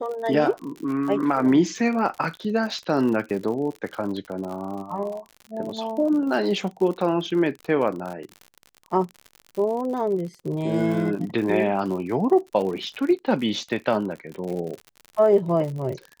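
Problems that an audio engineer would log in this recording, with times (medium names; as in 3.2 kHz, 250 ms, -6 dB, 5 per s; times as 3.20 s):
crackle 63 per s -31 dBFS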